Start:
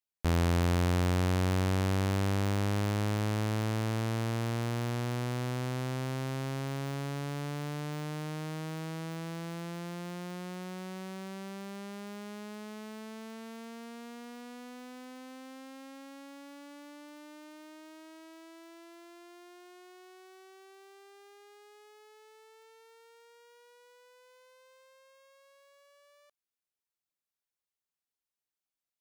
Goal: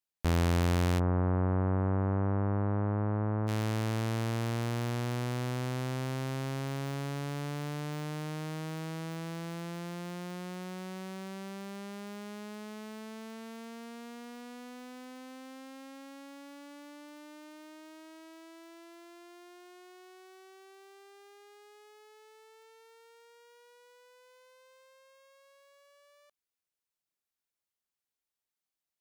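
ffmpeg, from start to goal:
ffmpeg -i in.wav -filter_complex "[0:a]asplit=3[link_01][link_02][link_03];[link_01]afade=type=out:start_time=0.98:duration=0.02[link_04];[link_02]lowpass=frequency=1400:width=0.5412,lowpass=frequency=1400:width=1.3066,afade=type=in:start_time=0.98:duration=0.02,afade=type=out:start_time=3.47:duration=0.02[link_05];[link_03]afade=type=in:start_time=3.47:duration=0.02[link_06];[link_04][link_05][link_06]amix=inputs=3:normalize=0" out.wav

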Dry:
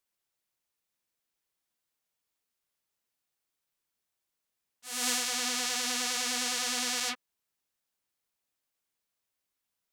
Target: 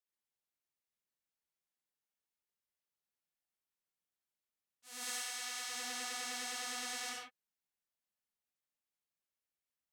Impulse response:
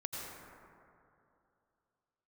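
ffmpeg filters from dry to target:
-filter_complex "[0:a]asplit=3[link_01][link_02][link_03];[link_01]afade=type=out:start_time=5.03:duration=0.02[link_04];[link_02]highpass=frequency=980:poles=1,afade=type=in:start_time=5.03:duration=0.02,afade=type=out:start_time=5.68:duration=0.02[link_05];[link_03]afade=type=in:start_time=5.68:duration=0.02[link_06];[link_04][link_05][link_06]amix=inputs=3:normalize=0[link_07];[1:a]atrim=start_sample=2205,afade=type=out:start_time=0.28:duration=0.01,atrim=end_sample=12789,asetrate=66150,aresample=44100[link_08];[link_07][link_08]afir=irnorm=-1:irlink=0,volume=-6dB"

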